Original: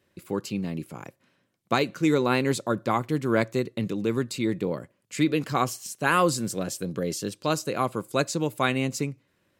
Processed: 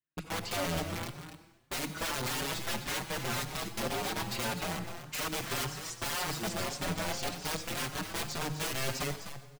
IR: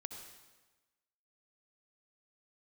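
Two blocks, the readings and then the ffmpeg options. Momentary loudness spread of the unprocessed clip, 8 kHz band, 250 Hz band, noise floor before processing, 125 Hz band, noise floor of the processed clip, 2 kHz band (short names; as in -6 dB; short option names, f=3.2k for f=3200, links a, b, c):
9 LU, -1.5 dB, -13.5 dB, -71 dBFS, -8.5 dB, -56 dBFS, -5.5 dB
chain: -filter_complex "[0:a]lowpass=4.6k,bandreject=f=50:t=h:w=6,bandreject=f=100:t=h:w=6,bandreject=f=150:t=h:w=6,agate=range=-33dB:threshold=-45dB:ratio=3:detection=peak,equalizer=f=480:w=2.8:g=-14.5,aecho=1:1:6.3:0.55,acompressor=threshold=-39dB:ratio=2.5,aeval=exprs='(mod(53.1*val(0)+1,2)-1)/53.1':c=same,aecho=1:1:254:0.335,asplit=2[a][b];[1:a]atrim=start_sample=2205[c];[b][c]afir=irnorm=-1:irlink=0,volume=3.5dB[d];[a][d]amix=inputs=2:normalize=0,asplit=2[e][f];[f]adelay=5.3,afreqshift=1.8[g];[e][g]amix=inputs=2:normalize=1,volume=2.5dB"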